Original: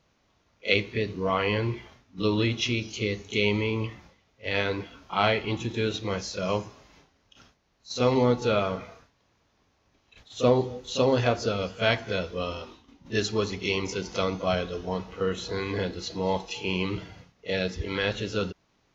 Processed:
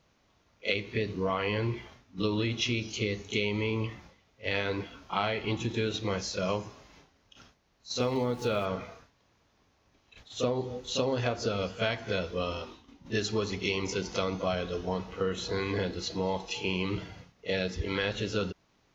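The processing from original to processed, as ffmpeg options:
ffmpeg -i in.wav -filter_complex "[0:a]asplit=3[link_01][link_02][link_03];[link_01]afade=type=out:start_time=8:duration=0.02[link_04];[link_02]aeval=exprs='val(0)*gte(abs(val(0)),0.00841)':channel_layout=same,afade=type=in:start_time=8:duration=0.02,afade=type=out:start_time=8.64:duration=0.02[link_05];[link_03]afade=type=in:start_time=8.64:duration=0.02[link_06];[link_04][link_05][link_06]amix=inputs=3:normalize=0,acompressor=threshold=-25dB:ratio=12" out.wav

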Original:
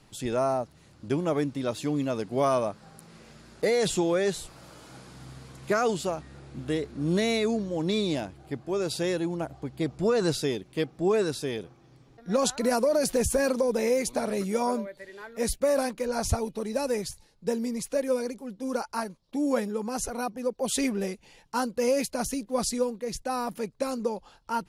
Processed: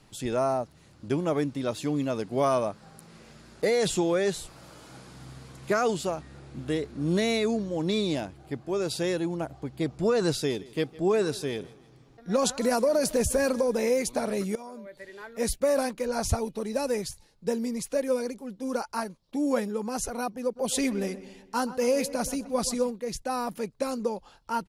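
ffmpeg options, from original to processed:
ffmpeg -i in.wav -filter_complex "[0:a]asettb=1/sr,asplit=3[link_01][link_02][link_03];[link_01]atrim=end=10.344[link_04];[link_02]atrim=start=10.34:end=13.89,asetpts=PTS-STARTPTS,afade=type=in:duration=0.004:curve=qsin,afade=type=out:start_time=3.546:duration=0.004:curve=qsin,aecho=1:1:158|316|474:0.0944|0.0368|0.0144,atrim=end_sample=156555[link_05];[link_03]atrim=start=13.886[link_06];[link_04][link_05]acrossfade=duration=0.004:curve1=hsin:curve2=qsin[link_07];[link_07][link_06]acrossfade=duration=0.004:curve1=qsin:curve2=hsin,asettb=1/sr,asplit=3[link_08][link_09][link_10];[link_08]atrim=end=14.554[link_11];[link_09]atrim=start=14.55:end=14.97,asetpts=PTS-STARTPTS,afade=type=in:duration=0.004:curve=qsin,afade=type=out:start_time=0.416:duration=0.004:curve=qsin,acompressor=threshold=-38dB:ratio=12:attack=3.2:release=140:knee=1:detection=peak[link_12];[link_10]atrim=start=14.966[link_13];[link_11][link_12]acrossfade=duration=0.004:curve1=hsin:curve2=qsin[link_14];[link_14][link_13]acrossfade=duration=0.004:curve1=qsin:curve2=hsin,asplit=3[link_15][link_16][link_17];[link_15]afade=type=out:start_time=20.55:duration=0.02[link_18];[link_16]asplit=2[link_19][link_20];[link_20]adelay=127,lowpass=frequency=2300:poles=1,volume=-14dB,asplit=2[link_21][link_22];[link_22]adelay=127,lowpass=frequency=2300:poles=1,volume=0.51,asplit=2[link_23][link_24];[link_24]adelay=127,lowpass=frequency=2300:poles=1,volume=0.51,asplit=2[link_25][link_26];[link_26]adelay=127,lowpass=frequency=2300:poles=1,volume=0.51,asplit=2[link_27][link_28];[link_28]adelay=127,lowpass=frequency=2300:poles=1,volume=0.51[link_29];[link_19][link_21][link_23][link_25][link_27][link_29]amix=inputs=6:normalize=0,afade=type=in:start_time=20.55:duration=0.02,afade=type=out:start_time=22.9:duration=0.02[link_30];[link_17]afade=type=in:start_time=22.9:duration=0.02[link_31];[link_18][link_30][link_31]amix=inputs=3:normalize=0" out.wav

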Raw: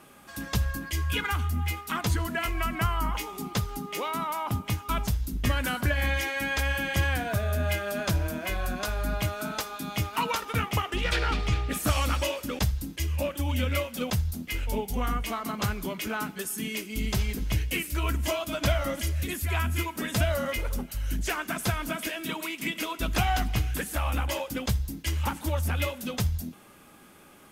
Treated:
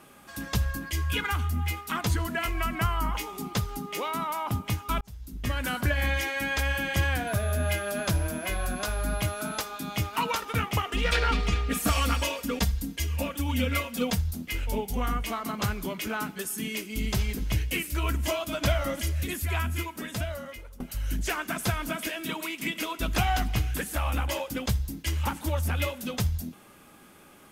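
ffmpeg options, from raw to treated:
ffmpeg -i in.wav -filter_complex "[0:a]asettb=1/sr,asplit=3[link_01][link_02][link_03];[link_01]atrim=end=7.274[link_04];[link_02]atrim=start=7.27:end=9.62,asetpts=PTS-STARTPTS,afade=type=in:duration=0.004:curve=qsin,afade=type=out:start_time=2.346:duration=0.004:curve=qsin,aeval=exprs='val(0)+0.00708*sin(2*PI*11000*n/s)':channel_layout=same[link_05];[link_03]atrim=start=9.616[link_06];[link_04][link_05]acrossfade=duration=0.004:curve1=hsin:curve2=qsin[link_07];[link_07][link_06]acrossfade=duration=0.004:curve1=qsin:curve2=hsin,asettb=1/sr,asplit=3[link_08][link_09][link_10];[link_08]atrim=end=10.864[link_11];[link_09]atrim=start=10.86:end=14.18,asetpts=PTS-STARTPTS,afade=type=in:duration=0.004:curve=qsin,afade=type=out:start_time=3.316:duration=0.004:curve=qsin,aecho=1:1:4.3:0.65,atrim=end_sample=146412[link_12];[link_10]atrim=start=14.176[link_13];[link_11][link_12]acrossfade=duration=0.004:curve1=hsin:curve2=qsin[link_14];[link_14][link_13]acrossfade=duration=0.004:curve1=qsin:curve2=hsin,asplit=3[link_15][link_16][link_17];[link_15]atrim=end=5.01,asetpts=PTS-STARTPTS,afade=type=out:start_time=5.006:duration=0.004:curve=hsin[link_18];[link_16]atrim=start=5.01:end=20.8,asetpts=PTS-STARTPTS,afade=type=in:duration=0.76,afade=type=out:start_time=14.4:duration=1.39:silence=0.0891251[link_19];[link_17]atrim=start=20.8,asetpts=PTS-STARTPTS,afade=type=in:duration=0.004:curve=hsin:silence=0.0891251[link_20];[link_18][link_19][link_20]concat=n=3:v=0:a=1" out.wav

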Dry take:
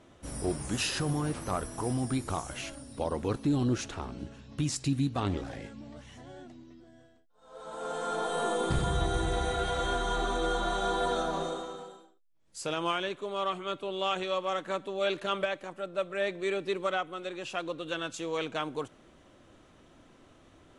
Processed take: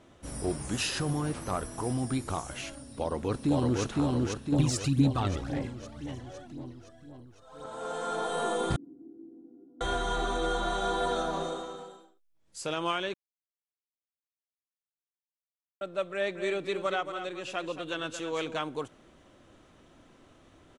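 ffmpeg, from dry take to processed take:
ffmpeg -i in.wav -filter_complex "[0:a]asplit=2[link_01][link_02];[link_02]afade=type=in:start_time=2.81:duration=0.01,afade=type=out:start_time=3.82:duration=0.01,aecho=0:1:510|1020|1530|2040|2550|3060|3570|4080|4590:0.891251|0.534751|0.32085|0.19251|0.115506|0.0693037|0.0415822|0.0249493|0.0149696[link_03];[link_01][link_03]amix=inputs=2:normalize=0,asettb=1/sr,asplit=3[link_04][link_05][link_06];[link_04]atrim=end=4.524[link_07];[link_05]atrim=start=4.52:end=7.66,asetpts=PTS-STARTPTS,afade=type=in:duration=0.004:curve=qsin,afade=type=out:start_time=3.136:duration=0.004:curve=qsin,aphaser=in_gain=1:out_gain=1:delay=1.7:decay=0.54:speed=1.9:type=sinusoidal[link_08];[link_06]atrim=start=7.656[link_09];[link_07][link_08]acrossfade=duration=0.004:curve1=hsin:curve2=qsin[link_10];[link_10][link_09]acrossfade=duration=0.004:curve1=qsin:curve2=hsin,asettb=1/sr,asplit=3[link_11][link_12][link_13];[link_11]atrim=end=8.764[link_14];[link_12]atrim=start=8.76:end=9.81,asetpts=PTS-STARTPTS,afade=type=in:duration=0.004:curve=qsin,afade=type=out:start_time=1.046:duration=0.004:curve=qsin,asuperpass=centerf=280:order=4:qfactor=5.5[link_15];[link_13]atrim=start=9.806[link_16];[link_14][link_15]acrossfade=duration=0.004:curve1=hsin:curve2=qsin[link_17];[link_17][link_16]acrossfade=duration=0.004:curve1=qsin:curve2=hsin,asplit=3[link_18][link_19][link_20];[link_18]afade=type=out:start_time=16.35:duration=0.02[link_21];[link_19]aecho=1:1:226:0.355,afade=type=in:start_time=16.35:duration=0.02,afade=type=out:start_time=18.58:duration=0.02[link_22];[link_20]afade=type=in:start_time=18.58:duration=0.02[link_23];[link_21][link_22][link_23]amix=inputs=3:normalize=0,asplit=3[link_24][link_25][link_26];[link_24]atrim=end=13.14,asetpts=PTS-STARTPTS,afade=type=out:start_time=13.136:duration=0.004:curve=hsin[link_27];[link_25]atrim=start=13.14:end=15.81,asetpts=PTS-STARTPTS,volume=0[link_28];[link_26]atrim=start=15.81,asetpts=PTS-STARTPTS,afade=type=in:duration=0.004:curve=hsin[link_29];[link_27][link_28][link_29]concat=n=3:v=0:a=1" out.wav

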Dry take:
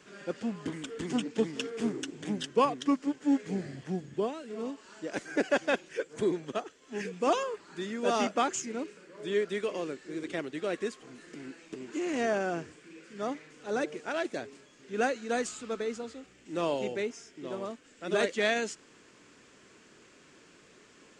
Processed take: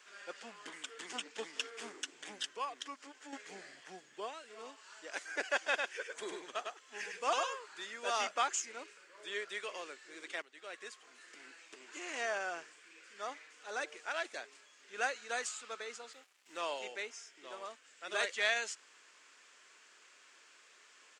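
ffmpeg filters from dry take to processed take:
ffmpeg -i in.wav -filter_complex "[0:a]asettb=1/sr,asplit=3[link_01][link_02][link_03];[link_01]atrim=end=2.494[link_04];[link_02]atrim=start=2.49:end=3.33,asetpts=PTS-STARTPTS,afade=type=in:duration=0.004:curve=qsin,afade=type=out:start_time=0.836:duration=0.004:curve=qsin,acompressor=threshold=-35dB:ratio=2:attack=3.2:release=140:knee=1:detection=peak[link_05];[link_03]atrim=start=3.326[link_06];[link_04][link_05]acrossfade=duration=0.004:curve1=hsin:curve2=qsin[link_07];[link_07][link_06]acrossfade=duration=0.004:curve1=qsin:curve2=hsin,asplit=3[link_08][link_09][link_10];[link_08]afade=type=out:start_time=5.66:duration=0.02[link_11];[link_09]aecho=1:1:102:0.631,afade=type=in:start_time=5.66:duration=0.02,afade=type=out:start_time=7.84:duration=0.02[link_12];[link_10]afade=type=in:start_time=7.84:duration=0.02[link_13];[link_11][link_12][link_13]amix=inputs=3:normalize=0,asettb=1/sr,asplit=3[link_14][link_15][link_16];[link_14]atrim=end=16.134[link_17];[link_15]atrim=start=16.13:end=16.57,asetpts=PTS-STARTPTS,afade=type=in:duration=0.004:curve=qsin,afade=type=out:start_time=0.436:duration=0.004:curve=qsin,aeval=exprs='sgn(val(0))*max(abs(val(0))-0.00119,0)':channel_layout=same[link_18];[link_16]atrim=start=16.566[link_19];[link_17][link_18]acrossfade=duration=0.004:curve1=hsin:curve2=qsin[link_20];[link_20][link_19]acrossfade=duration=0.004:curve1=qsin:curve2=hsin,asplit=2[link_21][link_22];[link_21]atrim=end=10.42,asetpts=PTS-STARTPTS,afade=type=out:start_time=10.416:duration=0.004:curve=hsin:silence=0.199526[link_23];[link_22]atrim=start=10.42,asetpts=PTS-STARTPTS,afade=type=in:duration=1.17:curve=qsin:silence=0.199526[link_24];[link_23][link_24]concat=n=2:v=0:a=1,highpass=940,volume=-1dB" out.wav

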